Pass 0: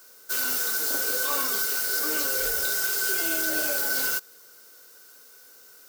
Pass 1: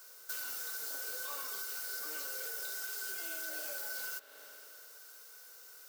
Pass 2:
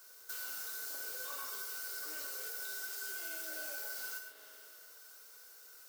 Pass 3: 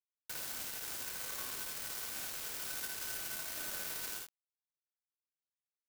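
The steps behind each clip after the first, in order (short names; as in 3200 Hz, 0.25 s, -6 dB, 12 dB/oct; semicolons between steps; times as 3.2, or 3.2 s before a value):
HPF 480 Hz 12 dB/oct; spring tank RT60 2.5 s, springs 39 ms, chirp 20 ms, DRR 12.5 dB; compressor 4:1, threshold -37 dBFS, peak gain reduction 12.5 dB; gain -3 dB
non-linear reverb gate 0.16 s flat, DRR 3.5 dB; gain -3.5 dB
in parallel at -6 dB: wrapped overs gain 42.5 dB; on the sum: requantised 6-bit, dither none; early reflections 55 ms -3.5 dB, 78 ms -6 dB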